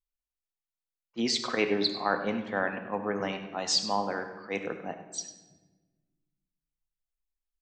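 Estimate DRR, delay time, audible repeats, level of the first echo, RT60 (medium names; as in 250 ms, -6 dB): 5.5 dB, 99 ms, 1, -13.0 dB, 1.3 s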